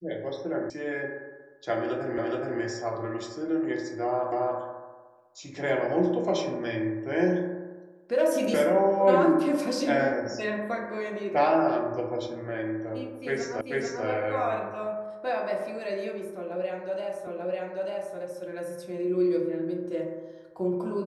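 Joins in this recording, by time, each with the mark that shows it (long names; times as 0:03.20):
0:00.70: cut off before it has died away
0:02.18: the same again, the last 0.42 s
0:04.32: the same again, the last 0.28 s
0:13.61: the same again, the last 0.44 s
0:17.27: the same again, the last 0.89 s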